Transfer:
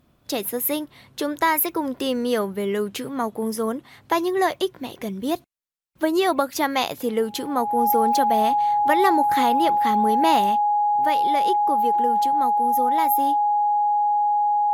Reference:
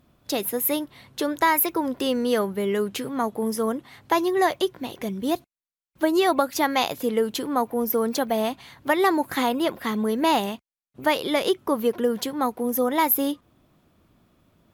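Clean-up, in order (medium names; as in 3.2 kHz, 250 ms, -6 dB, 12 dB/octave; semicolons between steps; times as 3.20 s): band-stop 830 Hz, Q 30; trim 0 dB, from 10.96 s +5.5 dB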